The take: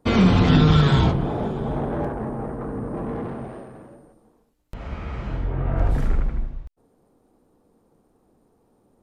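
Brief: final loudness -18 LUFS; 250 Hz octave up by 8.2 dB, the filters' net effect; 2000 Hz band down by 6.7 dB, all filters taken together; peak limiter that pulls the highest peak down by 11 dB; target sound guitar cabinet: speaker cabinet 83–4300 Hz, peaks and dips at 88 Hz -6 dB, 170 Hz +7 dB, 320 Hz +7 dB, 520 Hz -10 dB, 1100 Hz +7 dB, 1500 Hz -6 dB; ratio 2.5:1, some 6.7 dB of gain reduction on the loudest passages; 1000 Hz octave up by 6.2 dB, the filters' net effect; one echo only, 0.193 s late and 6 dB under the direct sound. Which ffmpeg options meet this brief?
-af "equalizer=f=250:t=o:g=6.5,equalizer=f=1k:t=o:g=7,equalizer=f=2k:t=o:g=-8.5,acompressor=threshold=-18dB:ratio=2.5,alimiter=limit=-19dB:level=0:latency=1,highpass=83,equalizer=f=88:t=q:w=4:g=-6,equalizer=f=170:t=q:w=4:g=7,equalizer=f=320:t=q:w=4:g=7,equalizer=f=520:t=q:w=4:g=-10,equalizer=f=1.1k:t=q:w=4:g=7,equalizer=f=1.5k:t=q:w=4:g=-6,lowpass=f=4.3k:w=0.5412,lowpass=f=4.3k:w=1.3066,aecho=1:1:193:0.501,volume=7.5dB"

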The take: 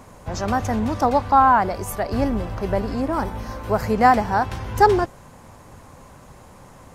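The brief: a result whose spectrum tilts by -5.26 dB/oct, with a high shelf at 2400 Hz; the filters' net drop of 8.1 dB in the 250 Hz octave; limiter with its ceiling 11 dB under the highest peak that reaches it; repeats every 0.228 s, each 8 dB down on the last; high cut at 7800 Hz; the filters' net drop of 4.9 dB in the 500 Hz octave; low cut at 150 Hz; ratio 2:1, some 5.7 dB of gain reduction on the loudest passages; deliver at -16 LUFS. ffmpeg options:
-af "highpass=150,lowpass=7.8k,equalizer=f=250:t=o:g=-8,equalizer=f=500:t=o:g=-3.5,highshelf=f=2.4k:g=-7.5,acompressor=threshold=-22dB:ratio=2,alimiter=limit=-21dB:level=0:latency=1,aecho=1:1:228|456|684|912|1140:0.398|0.159|0.0637|0.0255|0.0102,volume=15.5dB"

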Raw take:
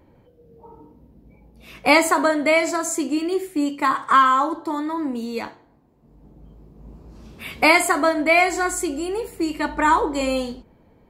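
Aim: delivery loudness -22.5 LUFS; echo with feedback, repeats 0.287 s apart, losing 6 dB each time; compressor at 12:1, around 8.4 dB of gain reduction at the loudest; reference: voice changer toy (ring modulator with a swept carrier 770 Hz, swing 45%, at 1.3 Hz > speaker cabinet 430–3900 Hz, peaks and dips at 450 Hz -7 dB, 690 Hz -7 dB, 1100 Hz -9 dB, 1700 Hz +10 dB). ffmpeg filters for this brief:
-af "acompressor=threshold=-18dB:ratio=12,aecho=1:1:287|574|861|1148|1435|1722:0.501|0.251|0.125|0.0626|0.0313|0.0157,aeval=exprs='val(0)*sin(2*PI*770*n/s+770*0.45/1.3*sin(2*PI*1.3*n/s))':c=same,highpass=430,equalizer=f=450:t=q:w=4:g=-7,equalizer=f=690:t=q:w=4:g=-7,equalizer=f=1.1k:t=q:w=4:g=-9,equalizer=f=1.7k:t=q:w=4:g=10,lowpass=f=3.9k:w=0.5412,lowpass=f=3.9k:w=1.3066,volume=2dB"

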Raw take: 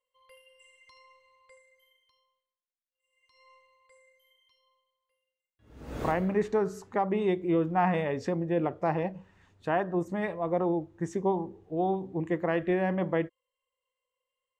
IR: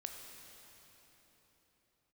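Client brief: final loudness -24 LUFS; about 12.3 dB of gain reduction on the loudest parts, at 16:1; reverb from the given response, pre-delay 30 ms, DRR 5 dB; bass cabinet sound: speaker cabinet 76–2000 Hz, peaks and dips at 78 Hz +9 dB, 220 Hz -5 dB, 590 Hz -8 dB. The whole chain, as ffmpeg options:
-filter_complex "[0:a]acompressor=threshold=-34dB:ratio=16,asplit=2[a][b];[1:a]atrim=start_sample=2205,adelay=30[c];[b][c]afir=irnorm=-1:irlink=0,volume=-2.5dB[d];[a][d]amix=inputs=2:normalize=0,highpass=f=76:w=0.5412,highpass=f=76:w=1.3066,equalizer=f=78:t=q:w=4:g=9,equalizer=f=220:t=q:w=4:g=-5,equalizer=f=590:t=q:w=4:g=-8,lowpass=f=2k:w=0.5412,lowpass=f=2k:w=1.3066,volume=16.5dB"

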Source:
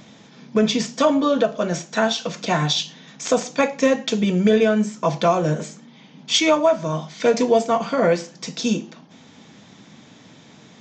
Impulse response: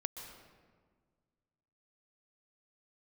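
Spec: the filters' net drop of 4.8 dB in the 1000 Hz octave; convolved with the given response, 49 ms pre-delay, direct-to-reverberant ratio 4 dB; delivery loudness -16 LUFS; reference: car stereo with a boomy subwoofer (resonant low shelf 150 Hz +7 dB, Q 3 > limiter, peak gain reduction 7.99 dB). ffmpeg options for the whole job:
-filter_complex "[0:a]equalizer=f=1k:t=o:g=-6.5,asplit=2[a][b];[1:a]atrim=start_sample=2205,adelay=49[c];[b][c]afir=irnorm=-1:irlink=0,volume=-3.5dB[d];[a][d]amix=inputs=2:normalize=0,lowshelf=f=150:t=q:w=3:g=7,volume=8dB,alimiter=limit=-6dB:level=0:latency=1"

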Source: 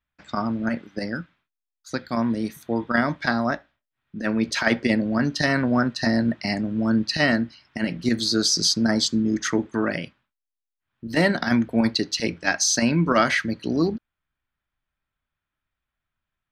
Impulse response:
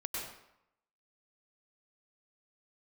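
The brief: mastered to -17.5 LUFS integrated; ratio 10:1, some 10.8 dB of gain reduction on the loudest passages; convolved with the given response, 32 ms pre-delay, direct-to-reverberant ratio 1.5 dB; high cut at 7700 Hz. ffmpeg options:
-filter_complex "[0:a]lowpass=7.7k,acompressor=threshold=-26dB:ratio=10,asplit=2[a][b];[1:a]atrim=start_sample=2205,adelay=32[c];[b][c]afir=irnorm=-1:irlink=0,volume=-3.5dB[d];[a][d]amix=inputs=2:normalize=0,volume=11.5dB"

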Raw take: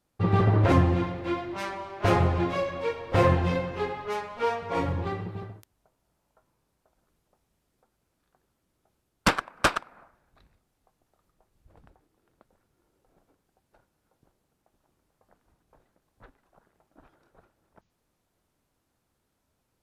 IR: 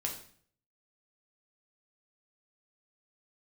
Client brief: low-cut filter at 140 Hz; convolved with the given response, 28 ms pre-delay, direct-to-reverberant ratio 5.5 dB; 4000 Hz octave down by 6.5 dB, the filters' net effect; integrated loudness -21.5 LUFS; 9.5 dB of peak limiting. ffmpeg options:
-filter_complex "[0:a]highpass=140,equalizer=f=4k:t=o:g=-9,alimiter=limit=-19dB:level=0:latency=1,asplit=2[a][b];[1:a]atrim=start_sample=2205,adelay=28[c];[b][c]afir=irnorm=-1:irlink=0,volume=-7.5dB[d];[a][d]amix=inputs=2:normalize=0,volume=8dB"

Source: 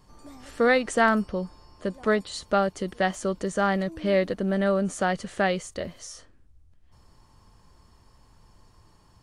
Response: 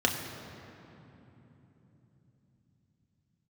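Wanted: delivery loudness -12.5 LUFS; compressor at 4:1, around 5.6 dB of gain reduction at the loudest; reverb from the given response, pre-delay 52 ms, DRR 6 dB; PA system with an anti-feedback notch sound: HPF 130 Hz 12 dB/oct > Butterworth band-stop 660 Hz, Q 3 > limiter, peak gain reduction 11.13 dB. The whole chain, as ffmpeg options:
-filter_complex "[0:a]acompressor=threshold=-23dB:ratio=4,asplit=2[a][b];[1:a]atrim=start_sample=2205,adelay=52[c];[b][c]afir=irnorm=-1:irlink=0,volume=-17.5dB[d];[a][d]amix=inputs=2:normalize=0,highpass=130,asuperstop=centerf=660:order=8:qfactor=3,volume=21.5dB,alimiter=limit=-3dB:level=0:latency=1"

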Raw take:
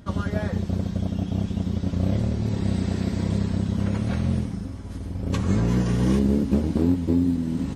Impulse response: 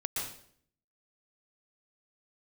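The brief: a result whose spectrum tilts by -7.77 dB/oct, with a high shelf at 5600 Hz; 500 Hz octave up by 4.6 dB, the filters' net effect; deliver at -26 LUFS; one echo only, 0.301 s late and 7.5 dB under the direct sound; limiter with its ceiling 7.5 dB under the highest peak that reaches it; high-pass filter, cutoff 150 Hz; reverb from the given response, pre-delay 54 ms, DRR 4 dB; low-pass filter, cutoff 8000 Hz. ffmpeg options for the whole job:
-filter_complex "[0:a]highpass=150,lowpass=8k,equalizer=f=500:t=o:g=6,highshelf=f=5.6k:g=4,alimiter=limit=-16dB:level=0:latency=1,aecho=1:1:301:0.422,asplit=2[a][b];[1:a]atrim=start_sample=2205,adelay=54[c];[b][c]afir=irnorm=-1:irlink=0,volume=-8dB[d];[a][d]amix=inputs=2:normalize=0,volume=-1dB"

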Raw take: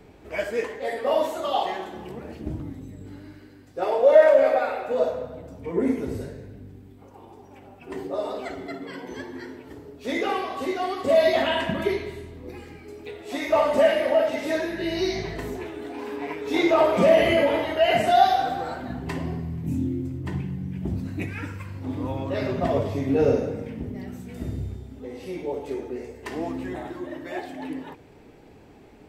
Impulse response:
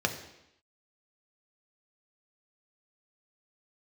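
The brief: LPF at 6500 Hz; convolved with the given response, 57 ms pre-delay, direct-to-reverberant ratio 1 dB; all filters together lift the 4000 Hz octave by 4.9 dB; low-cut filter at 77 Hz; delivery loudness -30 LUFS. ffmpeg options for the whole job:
-filter_complex "[0:a]highpass=77,lowpass=6.5k,equalizer=f=4k:t=o:g=7,asplit=2[a][b];[1:a]atrim=start_sample=2205,adelay=57[c];[b][c]afir=irnorm=-1:irlink=0,volume=-10dB[d];[a][d]amix=inputs=2:normalize=0,volume=-8dB"

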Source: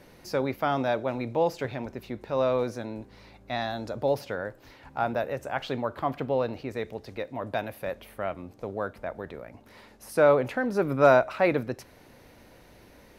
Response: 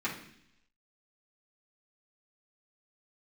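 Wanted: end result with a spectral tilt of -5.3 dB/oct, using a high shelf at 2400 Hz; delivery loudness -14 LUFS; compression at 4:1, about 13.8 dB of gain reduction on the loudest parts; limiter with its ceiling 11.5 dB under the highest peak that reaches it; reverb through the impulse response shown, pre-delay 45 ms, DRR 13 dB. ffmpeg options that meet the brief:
-filter_complex "[0:a]highshelf=f=2.4k:g=-3,acompressor=threshold=-31dB:ratio=4,alimiter=level_in=6dB:limit=-24dB:level=0:latency=1,volume=-6dB,asplit=2[a][b];[1:a]atrim=start_sample=2205,adelay=45[c];[b][c]afir=irnorm=-1:irlink=0,volume=-19.5dB[d];[a][d]amix=inputs=2:normalize=0,volume=27.5dB"

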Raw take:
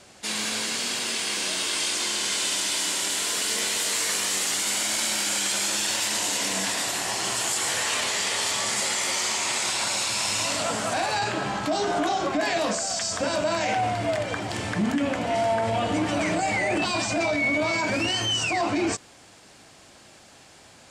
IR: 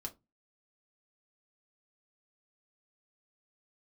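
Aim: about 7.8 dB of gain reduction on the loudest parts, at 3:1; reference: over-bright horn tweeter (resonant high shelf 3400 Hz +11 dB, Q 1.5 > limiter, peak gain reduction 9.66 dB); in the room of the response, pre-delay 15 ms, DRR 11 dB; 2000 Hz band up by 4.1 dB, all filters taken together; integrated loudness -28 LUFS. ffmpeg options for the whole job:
-filter_complex "[0:a]equalizer=f=2k:t=o:g=7.5,acompressor=threshold=-26dB:ratio=3,asplit=2[a][b];[1:a]atrim=start_sample=2205,adelay=15[c];[b][c]afir=irnorm=-1:irlink=0,volume=-8.5dB[d];[a][d]amix=inputs=2:normalize=0,highshelf=f=3.4k:t=q:w=1.5:g=11,volume=-4.5dB,alimiter=limit=-21dB:level=0:latency=1"

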